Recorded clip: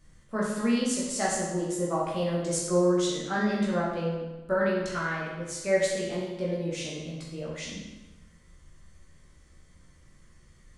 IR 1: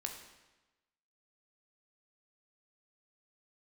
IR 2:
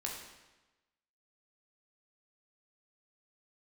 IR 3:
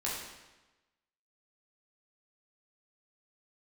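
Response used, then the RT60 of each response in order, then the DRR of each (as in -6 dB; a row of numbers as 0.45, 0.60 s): 3; 1.1, 1.1, 1.1 s; 3.0, -1.5, -6.5 dB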